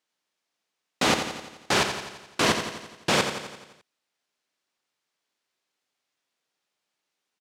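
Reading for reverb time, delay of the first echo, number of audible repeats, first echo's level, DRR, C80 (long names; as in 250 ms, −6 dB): no reverb audible, 86 ms, 6, −8.0 dB, no reverb audible, no reverb audible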